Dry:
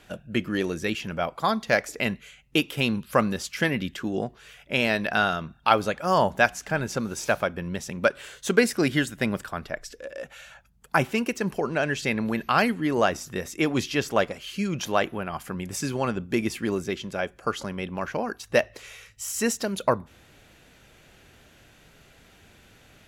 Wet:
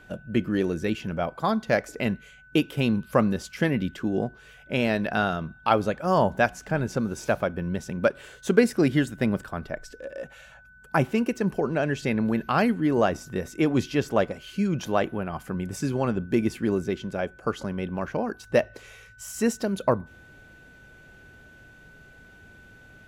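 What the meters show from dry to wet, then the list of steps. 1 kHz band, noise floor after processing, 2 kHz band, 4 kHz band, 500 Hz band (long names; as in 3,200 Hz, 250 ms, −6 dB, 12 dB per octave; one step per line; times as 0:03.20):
−2.0 dB, −52 dBFS, −4.0 dB, −6.0 dB, +1.0 dB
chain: tilt shelving filter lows +5 dB, about 880 Hz
steady tone 1,500 Hz −49 dBFS
level −1.5 dB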